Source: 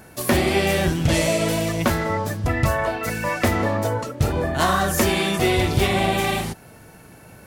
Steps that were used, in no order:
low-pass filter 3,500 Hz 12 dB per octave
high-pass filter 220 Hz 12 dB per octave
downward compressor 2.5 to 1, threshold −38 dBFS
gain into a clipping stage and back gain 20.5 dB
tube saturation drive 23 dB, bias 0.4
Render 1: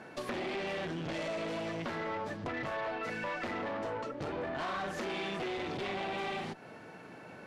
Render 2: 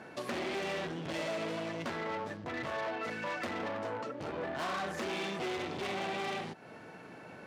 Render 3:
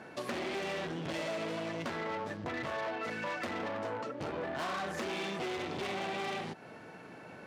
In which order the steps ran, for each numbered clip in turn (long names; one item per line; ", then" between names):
gain into a clipping stage and back, then high-pass filter, then tube saturation, then low-pass filter, then downward compressor
low-pass filter, then gain into a clipping stage and back, then tube saturation, then downward compressor, then high-pass filter
low-pass filter, then gain into a clipping stage and back, then tube saturation, then high-pass filter, then downward compressor